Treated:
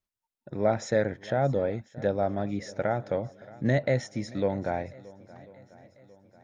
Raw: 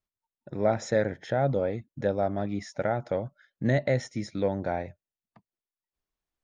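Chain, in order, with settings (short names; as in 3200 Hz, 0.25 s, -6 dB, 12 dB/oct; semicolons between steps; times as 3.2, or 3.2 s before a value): swung echo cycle 1.043 s, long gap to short 1.5:1, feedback 41%, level -21 dB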